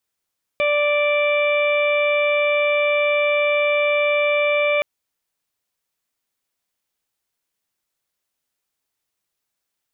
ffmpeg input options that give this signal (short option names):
-f lavfi -i "aevalsrc='0.133*sin(2*PI*587*t)+0.0398*sin(2*PI*1174*t)+0.0141*sin(2*PI*1761*t)+0.0944*sin(2*PI*2348*t)+0.0168*sin(2*PI*2935*t)+0.0188*sin(2*PI*3522*t)':d=4.22:s=44100"